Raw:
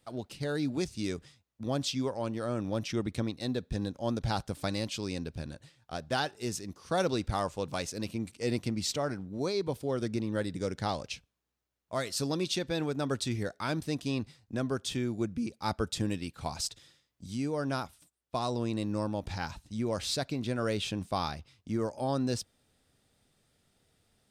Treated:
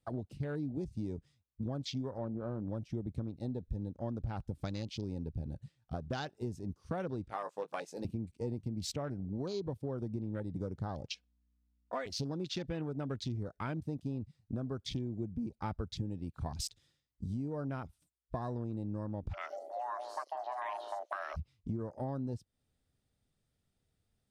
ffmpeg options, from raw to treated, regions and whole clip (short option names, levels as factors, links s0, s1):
-filter_complex "[0:a]asettb=1/sr,asplit=3[s0][s1][s2];[s0]atrim=end=2.184[s3];[s1]atrim=start=2.18:end=2.68,asetpts=PTS-STARTPTS,afade=t=in:d=0.004:c=qsin,afade=t=out:st=0.496:d=0.004:c=qsin,lowpass=1600,adynamicsmooth=sensitivity=4.5:basefreq=600,asplit=2[s4][s5];[s5]adelay=14,volume=0.251[s6];[s4][s6]amix=inputs=2:normalize=0,atrim=end_sample=22050[s7];[s2]atrim=start=2.676[s8];[s3][s7]acrossfade=d=0.004:c1=hsin:c2=qsin[s9];[s9][s8]acrossfade=d=0.004:c1=qsin:c2=hsin,asettb=1/sr,asplit=3[s10][s11][s12];[s10]atrim=end=7.284[s13];[s11]atrim=start=7.28:end=8.05,asetpts=PTS-STARTPTS,afade=t=in:d=0.004:c=qsin,afade=t=out:st=0.766:d=0.004:c=qsin,highpass=520,asplit=2[s14][s15];[s15]adelay=18,volume=0.422[s16];[s14][s16]amix=inputs=2:normalize=0,atrim=end_sample=33957[s17];[s12]atrim=start=8.046[s18];[s13][s17]acrossfade=d=0.004:c1=hsin:c2=qsin[s19];[s19][s18]acrossfade=d=0.004:c1=qsin:c2=hsin,asettb=1/sr,asplit=3[s20][s21][s22];[s20]atrim=end=11.104[s23];[s21]atrim=start=11.1:end=12.06,asetpts=PTS-STARTPTS,afade=t=in:d=0.004:c=qsin,afade=t=out:st=0.956:d=0.004:c=qsin,highpass=410,lowpass=7100,aeval=exprs='val(0)+0.000282*(sin(2*PI*60*n/s)+sin(2*PI*2*60*n/s)/2+sin(2*PI*3*60*n/s)/3+sin(2*PI*4*60*n/s)/4+sin(2*PI*5*60*n/s)/5)':c=same,aecho=1:1:4.1:0.86,atrim=end_sample=42336[s24];[s22]atrim=start=12.056[s25];[s23][s24]acrossfade=d=0.004:c1=hsin:c2=qsin[s26];[s26][s25]acrossfade=d=0.004:c1=qsin:c2=hsin,asettb=1/sr,asplit=3[s27][s28][s29];[s27]atrim=end=19.334[s30];[s28]atrim=start=19.33:end=21.37,asetpts=PTS-STARTPTS,afade=t=in:d=0.004:c=qsin,afade=t=out:st=2.036:d=0.004:c=qsin,afreqshift=490,acrossover=split=1300|4100[s31][s32][s33];[s31]acompressor=threshold=0.02:ratio=4[s34];[s32]acompressor=threshold=0.00794:ratio=4[s35];[s33]acompressor=threshold=0.00708:ratio=4[s36];[s34][s35][s36]amix=inputs=3:normalize=0,acrossover=split=620|4900[s37][s38][s39];[s39]adelay=80[s40];[s37]adelay=190[s41];[s41][s38][s40]amix=inputs=3:normalize=0,atrim=end_sample=89964[s42];[s29]atrim=start=21.366[s43];[s30][s42]acrossfade=d=0.004:c1=hsin:c2=qsin[s44];[s44][s43]acrossfade=d=0.004:c1=qsin:c2=hsin,afwtdn=0.01,lowshelf=f=180:g=11,acompressor=threshold=0.0141:ratio=6,volume=1.26"